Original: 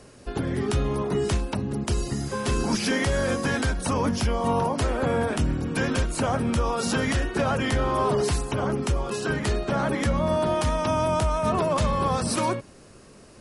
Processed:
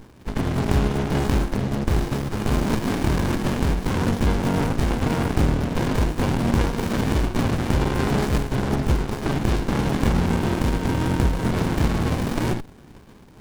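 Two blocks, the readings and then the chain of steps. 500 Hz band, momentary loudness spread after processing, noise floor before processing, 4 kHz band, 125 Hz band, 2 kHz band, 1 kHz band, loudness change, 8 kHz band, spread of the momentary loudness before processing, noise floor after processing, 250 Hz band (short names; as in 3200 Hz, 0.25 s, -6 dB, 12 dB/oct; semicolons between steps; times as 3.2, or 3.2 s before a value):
-1.5 dB, 3 LU, -49 dBFS, 0.0 dB, +5.5 dB, -0.5 dB, -1.5 dB, +2.5 dB, -3.5 dB, 4 LU, -46 dBFS, +4.5 dB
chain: spectral contrast lowered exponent 0.63; running maximum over 65 samples; gain +6.5 dB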